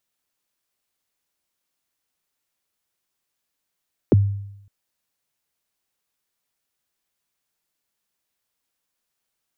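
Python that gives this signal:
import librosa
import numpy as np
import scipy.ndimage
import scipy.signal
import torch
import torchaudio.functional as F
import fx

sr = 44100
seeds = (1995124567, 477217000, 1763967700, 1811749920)

y = fx.drum_kick(sr, seeds[0], length_s=0.56, level_db=-8.5, start_hz=510.0, end_hz=100.0, sweep_ms=23.0, decay_s=0.81, click=False)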